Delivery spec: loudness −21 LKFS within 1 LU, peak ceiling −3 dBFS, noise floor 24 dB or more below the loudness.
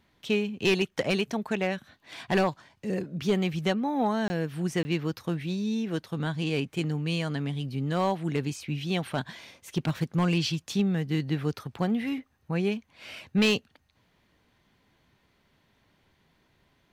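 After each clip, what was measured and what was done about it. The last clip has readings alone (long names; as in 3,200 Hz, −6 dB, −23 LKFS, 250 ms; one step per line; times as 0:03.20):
share of clipped samples 0.3%; peaks flattened at −17.0 dBFS; number of dropouts 2; longest dropout 20 ms; integrated loudness −29.0 LKFS; sample peak −17.0 dBFS; target loudness −21.0 LKFS
→ clipped peaks rebuilt −17 dBFS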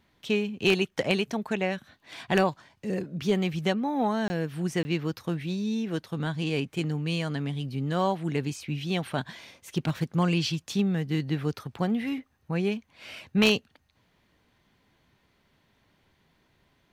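share of clipped samples 0.0%; number of dropouts 2; longest dropout 20 ms
→ repair the gap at 0:04.28/0:04.83, 20 ms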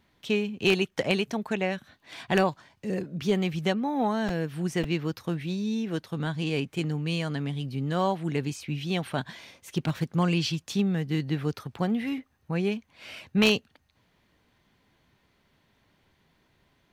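number of dropouts 0; integrated loudness −28.5 LKFS; sample peak −8.0 dBFS; target loudness −21.0 LKFS
→ level +7.5 dB
brickwall limiter −3 dBFS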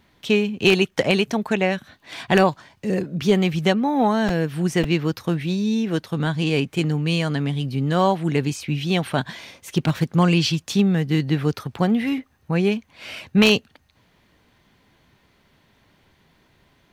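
integrated loudness −21.5 LKFS; sample peak −3.0 dBFS; background noise floor −61 dBFS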